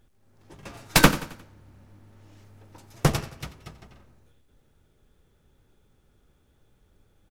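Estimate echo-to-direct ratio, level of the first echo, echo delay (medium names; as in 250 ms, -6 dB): -15.5 dB, -16.5 dB, 89 ms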